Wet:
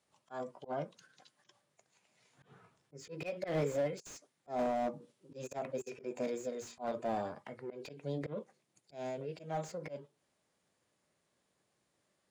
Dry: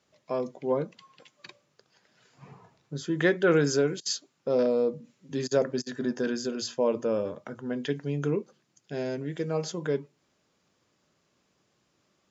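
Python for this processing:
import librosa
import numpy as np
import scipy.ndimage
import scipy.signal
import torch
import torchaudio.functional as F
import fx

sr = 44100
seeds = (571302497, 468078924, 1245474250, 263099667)

y = fx.auto_swell(x, sr, attack_ms=148.0)
y = fx.formant_shift(y, sr, semitones=6)
y = fx.slew_limit(y, sr, full_power_hz=47.0)
y = F.gain(torch.from_numpy(y), -7.5).numpy()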